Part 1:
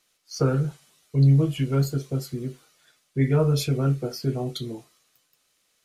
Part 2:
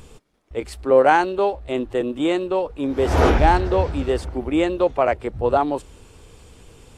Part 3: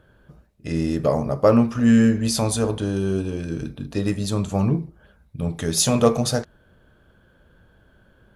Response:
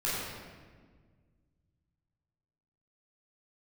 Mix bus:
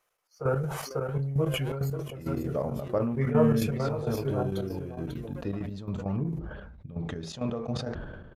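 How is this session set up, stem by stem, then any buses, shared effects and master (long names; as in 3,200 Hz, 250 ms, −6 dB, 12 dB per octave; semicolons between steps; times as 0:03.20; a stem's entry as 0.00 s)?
−3.5 dB, 0.00 s, no bus, no send, echo send −6.5 dB, octave-band graphic EQ 250/500/1,000/4,000/8,000 Hz −12/+6/+6/−11/−7 dB
−12.0 dB, 0.00 s, bus A, no send, echo send −11.5 dB, spectral dynamics exaggerated over time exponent 2; brickwall limiter −15.5 dBFS, peak gain reduction 10 dB; power curve on the samples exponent 2; automatic ducking −11 dB, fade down 1.40 s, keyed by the first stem
−5.5 dB, 1.50 s, bus A, no send, no echo send, high-shelf EQ 8,300 Hz −11 dB
bus A: 0.0 dB, head-to-tape spacing loss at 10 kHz 23 dB; downward compressor 1.5 to 1, threshold −33 dBFS, peak gain reduction 6 dB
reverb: not used
echo: single-tap delay 544 ms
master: gate pattern "x.x..x.xx." 166 BPM −12 dB; level that may fall only so fast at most 39 dB per second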